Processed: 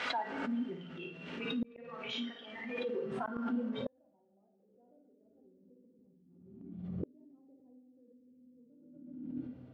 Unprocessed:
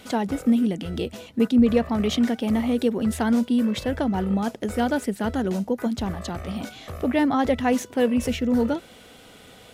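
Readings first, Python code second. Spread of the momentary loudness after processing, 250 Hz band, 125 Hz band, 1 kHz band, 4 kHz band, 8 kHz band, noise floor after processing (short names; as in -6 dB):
13 LU, -19.5 dB, -18.0 dB, -15.0 dB, -10.5 dB, under -25 dB, -70 dBFS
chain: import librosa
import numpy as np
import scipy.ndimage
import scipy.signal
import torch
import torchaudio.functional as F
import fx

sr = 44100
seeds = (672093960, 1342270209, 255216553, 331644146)

y = fx.delta_mod(x, sr, bps=64000, step_db=-35.0)
y = scipy.signal.sosfilt(scipy.signal.butter(2, 58.0, 'highpass', fs=sr, output='sos'), y)
y = fx.comb_fb(y, sr, f0_hz=130.0, decay_s=0.49, harmonics='odd', damping=0.0, mix_pct=80)
y = fx.room_flutter(y, sr, wall_m=9.5, rt60_s=0.68)
y = fx.rev_fdn(y, sr, rt60_s=2.3, lf_ratio=1.4, hf_ratio=0.65, size_ms=34.0, drr_db=1.5)
y = fx.dynamic_eq(y, sr, hz=330.0, q=0.89, threshold_db=-43.0, ratio=4.0, max_db=5)
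y = fx.rider(y, sr, range_db=4, speed_s=2.0)
y = fx.filter_sweep_bandpass(y, sr, from_hz=1600.0, to_hz=290.0, start_s=2.71, end_s=5.98, q=1.2)
y = scipy.signal.sosfilt(scipy.signal.butter(2, 4500.0, 'lowpass', fs=sr, output='sos'), y)
y = fx.noise_reduce_blind(y, sr, reduce_db=15)
y = fx.gate_flip(y, sr, shuts_db=-32.0, range_db=-41)
y = fx.pre_swell(y, sr, db_per_s=40.0)
y = F.gain(torch.from_numpy(y), 6.5).numpy()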